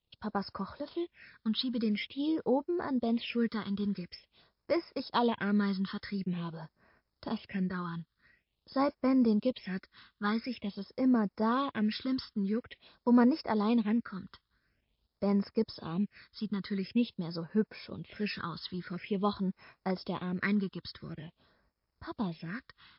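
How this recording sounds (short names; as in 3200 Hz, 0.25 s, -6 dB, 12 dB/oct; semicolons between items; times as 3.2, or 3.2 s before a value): a quantiser's noise floor 12-bit, dither none; phasing stages 6, 0.47 Hz, lowest notch 620–3300 Hz; MP3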